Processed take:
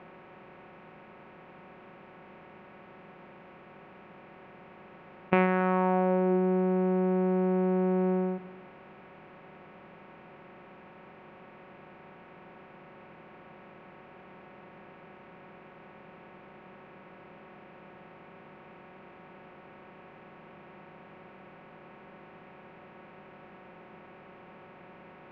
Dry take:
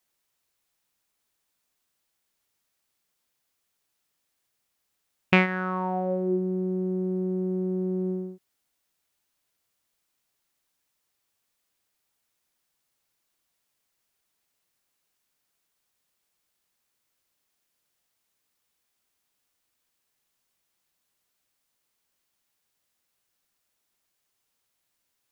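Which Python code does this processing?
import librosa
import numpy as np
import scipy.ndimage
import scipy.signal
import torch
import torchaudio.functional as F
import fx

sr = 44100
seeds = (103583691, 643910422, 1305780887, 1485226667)

p1 = fx.bin_compress(x, sr, power=0.4)
p2 = scipy.signal.sosfilt(scipy.signal.butter(2, 1200.0, 'lowpass', fs=sr, output='sos'), p1)
p3 = fx.low_shelf(p2, sr, hz=290.0, db=-6.5)
p4 = fx.hum_notches(p3, sr, base_hz=60, count=3)
y = p4 + fx.echo_single(p4, sr, ms=277, db=-22.0, dry=0)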